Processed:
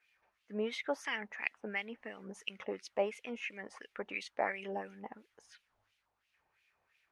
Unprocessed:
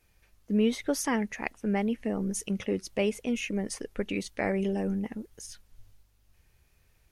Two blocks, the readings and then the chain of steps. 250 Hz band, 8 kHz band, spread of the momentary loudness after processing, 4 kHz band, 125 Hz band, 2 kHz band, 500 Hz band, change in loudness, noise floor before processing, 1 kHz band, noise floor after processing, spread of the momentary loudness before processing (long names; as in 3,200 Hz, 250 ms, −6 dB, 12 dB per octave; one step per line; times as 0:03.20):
−17.5 dB, −18.5 dB, 11 LU, −5.5 dB, below −15 dB, −2.0 dB, −7.5 dB, −9.0 dB, −67 dBFS, −3.5 dB, −81 dBFS, 8 LU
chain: auto-filter band-pass sine 2.9 Hz 780–2,800 Hz
level +4 dB